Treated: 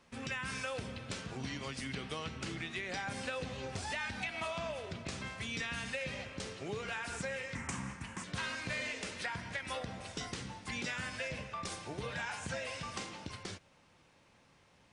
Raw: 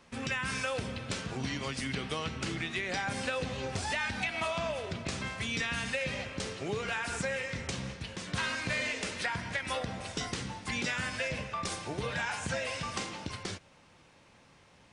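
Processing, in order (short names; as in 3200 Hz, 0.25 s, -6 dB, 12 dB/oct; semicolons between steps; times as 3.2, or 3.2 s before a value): 7.55–8.24 graphic EQ 250/500/1000/2000/4000/8000 Hz +7/-10/+11/+5/-12/+10 dB; gain -5.5 dB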